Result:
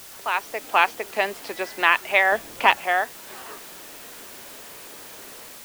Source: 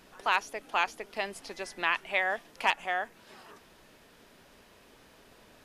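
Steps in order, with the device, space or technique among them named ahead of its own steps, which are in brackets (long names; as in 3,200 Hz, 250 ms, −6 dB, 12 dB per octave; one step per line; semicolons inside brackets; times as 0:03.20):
dictaphone (band-pass filter 280–3,500 Hz; automatic gain control gain up to 12.5 dB; tape wow and flutter; white noise bed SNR 17 dB)
0:02.32–0:02.77: low-shelf EQ 320 Hz +10 dB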